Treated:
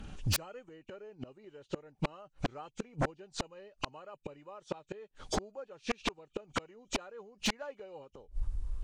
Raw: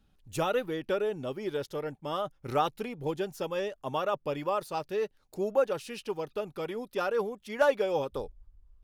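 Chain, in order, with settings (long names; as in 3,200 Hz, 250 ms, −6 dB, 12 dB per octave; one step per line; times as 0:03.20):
hearing-aid frequency compression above 2,200 Hz 1.5 to 1
gate with flip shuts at −30 dBFS, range −41 dB
sine wavefolder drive 14 dB, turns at −28.5 dBFS
level +4 dB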